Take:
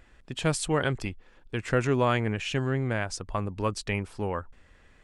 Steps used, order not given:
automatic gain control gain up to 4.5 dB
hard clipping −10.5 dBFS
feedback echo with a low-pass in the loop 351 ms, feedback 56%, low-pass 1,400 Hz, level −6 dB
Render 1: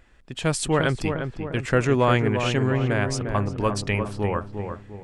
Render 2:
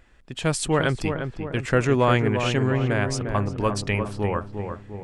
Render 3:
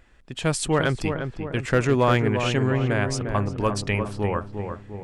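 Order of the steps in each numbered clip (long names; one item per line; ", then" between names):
hard clipping, then feedback echo with a low-pass in the loop, then automatic gain control
hard clipping, then automatic gain control, then feedback echo with a low-pass in the loop
automatic gain control, then hard clipping, then feedback echo with a low-pass in the loop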